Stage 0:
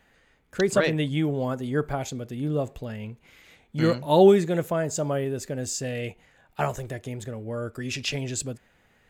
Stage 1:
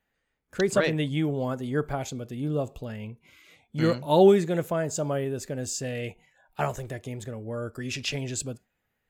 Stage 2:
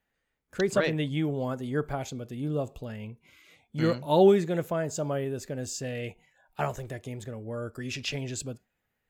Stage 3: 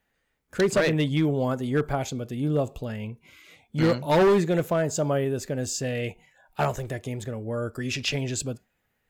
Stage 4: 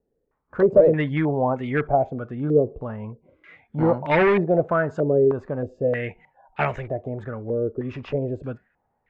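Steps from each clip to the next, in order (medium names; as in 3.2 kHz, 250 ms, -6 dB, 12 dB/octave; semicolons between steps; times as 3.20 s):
spectral noise reduction 15 dB; trim -1.5 dB
dynamic bell 9.1 kHz, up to -4 dB, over -52 dBFS, Q 1.3; trim -2 dB
hard clipper -21.5 dBFS, distortion -9 dB; trim +5.5 dB
step-sequenced low-pass 3.2 Hz 430–2200 Hz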